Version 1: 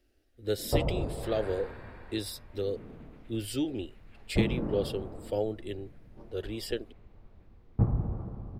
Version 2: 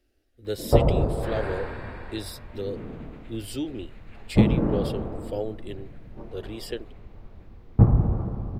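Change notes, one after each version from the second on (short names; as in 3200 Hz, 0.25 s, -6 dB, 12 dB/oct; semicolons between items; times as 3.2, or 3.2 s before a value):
background +9.5 dB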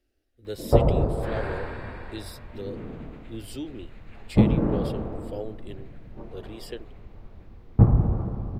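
speech -4.5 dB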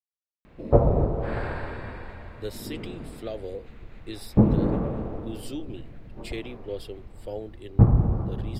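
speech: entry +1.95 s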